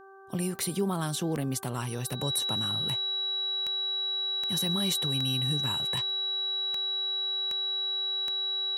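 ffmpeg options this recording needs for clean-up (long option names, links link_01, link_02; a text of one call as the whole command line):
ffmpeg -i in.wav -af "adeclick=threshold=4,bandreject=frequency=388.3:width_type=h:width=4,bandreject=frequency=776.6:width_type=h:width=4,bandreject=frequency=1164.9:width_type=h:width=4,bandreject=frequency=1553.2:width_type=h:width=4,bandreject=frequency=3900:width=30" out.wav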